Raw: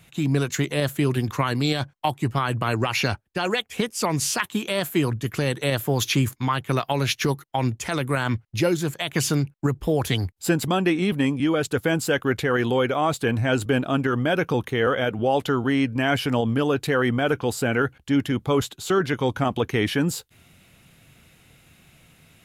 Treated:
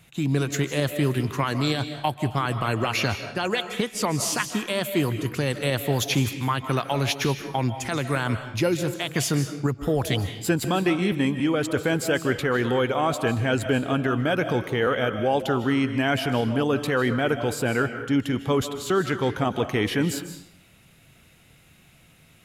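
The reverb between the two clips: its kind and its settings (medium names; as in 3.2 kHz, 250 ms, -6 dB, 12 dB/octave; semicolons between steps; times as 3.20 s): algorithmic reverb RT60 0.67 s, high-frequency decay 0.9×, pre-delay 115 ms, DRR 8.5 dB; trim -1.5 dB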